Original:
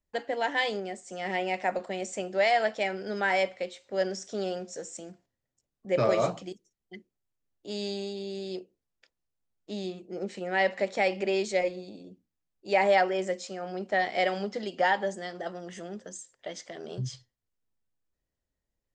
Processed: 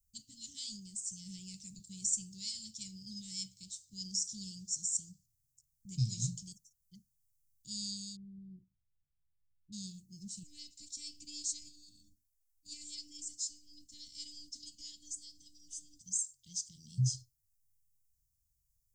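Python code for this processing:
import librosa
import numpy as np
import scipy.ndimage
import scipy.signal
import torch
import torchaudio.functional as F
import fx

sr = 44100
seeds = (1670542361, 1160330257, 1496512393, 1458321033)

y = fx.lowpass(x, sr, hz=1000.0, slope=24, at=(8.15, 9.72), fade=0.02)
y = fx.robotise(y, sr, hz=295.0, at=(10.43, 16.01))
y = scipy.signal.sosfilt(scipy.signal.cheby2(4, 70, [470.0, 1700.0], 'bandstop', fs=sr, output='sos'), y)
y = fx.high_shelf(y, sr, hz=7300.0, db=10.0)
y = F.gain(torch.from_numpy(y), 5.0).numpy()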